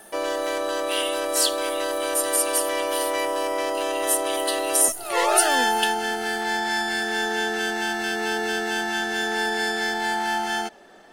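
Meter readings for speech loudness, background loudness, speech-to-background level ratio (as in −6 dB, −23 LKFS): −25.0 LKFS, −24.5 LKFS, −0.5 dB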